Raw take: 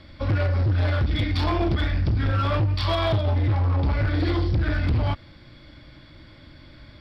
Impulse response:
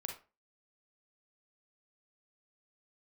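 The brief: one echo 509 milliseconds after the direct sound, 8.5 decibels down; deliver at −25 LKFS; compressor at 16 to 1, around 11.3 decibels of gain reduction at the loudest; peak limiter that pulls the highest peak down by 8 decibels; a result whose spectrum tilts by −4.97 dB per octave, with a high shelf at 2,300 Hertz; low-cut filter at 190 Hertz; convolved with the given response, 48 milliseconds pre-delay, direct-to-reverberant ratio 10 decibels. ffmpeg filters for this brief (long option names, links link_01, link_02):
-filter_complex "[0:a]highpass=190,highshelf=frequency=2300:gain=-6,acompressor=threshold=-33dB:ratio=16,alimiter=level_in=7dB:limit=-24dB:level=0:latency=1,volume=-7dB,aecho=1:1:509:0.376,asplit=2[link_01][link_02];[1:a]atrim=start_sample=2205,adelay=48[link_03];[link_02][link_03]afir=irnorm=-1:irlink=0,volume=-9dB[link_04];[link_01][link_04]amix=inputs=2:normalize=0,volume=14.5dB"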